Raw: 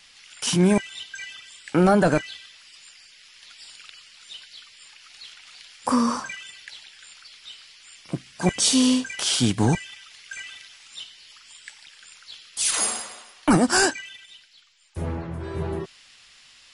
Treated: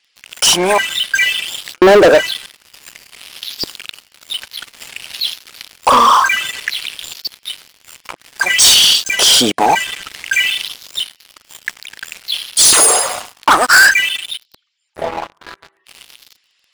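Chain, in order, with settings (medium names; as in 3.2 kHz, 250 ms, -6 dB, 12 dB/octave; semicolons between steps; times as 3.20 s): resonances exaggerated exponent 1.5; LFO high-pass saw up 0.55 Hz 340–4500 Hz; waveshaping leveller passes 5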